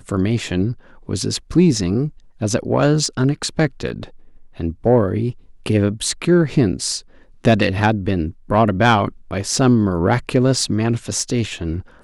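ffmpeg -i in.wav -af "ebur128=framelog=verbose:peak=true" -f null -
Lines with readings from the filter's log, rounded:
Integrated loudness:
  I:         -18.7 LUFS
  Threshold: -29.0 LUFS
Loudness range:
  LRA:         2.7 LU
  Threshold: -38.8 LUFS
  LRA low:   -20.1 LUFS
  LRA high:  -17.4 LUFS
True peak:
  Peak:       -3.9 dBFS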